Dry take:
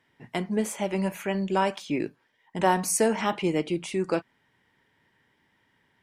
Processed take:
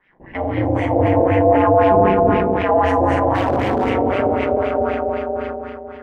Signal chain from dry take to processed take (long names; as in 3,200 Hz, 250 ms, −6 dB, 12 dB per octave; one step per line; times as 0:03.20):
four-comb reverb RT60 2.5 s, combs from 30 ms, DRR −7.5 dB
in parallel at 0 dB: downward compressor, threshold −32 dBFS, peak gain reduction 18 dB
on the sum: echo whose low-pass opens from repeat to repeat 138 ms, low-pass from 200 Hz, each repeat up 2 octaves, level 0 dB
auto-filter low-pass sine 3.9 Hz 610–2,500 Hz
ring modulation 96 Hz
brickwall limiter −7 dBFS, peak gain reduction 7 dB
0:00.96–0:02.57: tilt shelving filter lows +4 dB, about 1,400 Hz
0:03.34–0:03.90: hard clipping −12 dBFS, distortion −23 dB
dynamic equaliser 650 Hz, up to +4 dB, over −29 dBFS, Q 2.6
level that may fall only so fast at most 26 dB per second
level −1.5 dB